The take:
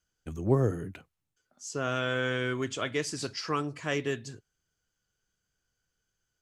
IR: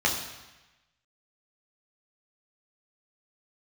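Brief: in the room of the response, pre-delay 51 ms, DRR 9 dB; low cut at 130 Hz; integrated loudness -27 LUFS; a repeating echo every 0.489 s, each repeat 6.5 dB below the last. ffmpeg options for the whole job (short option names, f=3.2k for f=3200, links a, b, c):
-filter_complex "[0:a]highpass=130,aecho=1:1:489|978|1467|1956|2445|2934:0.473|0.222|0.105|0.0491|0.0231|0.0109,asplit=2[a][b];[1:a]atrim=start_sample=2205,adelay=51[c];[b][c]afir=irnorm=-1:irlink=0,volume=-22dB[d];[a][d]amix=inputs=2:normalize=0,volume=4.5dB"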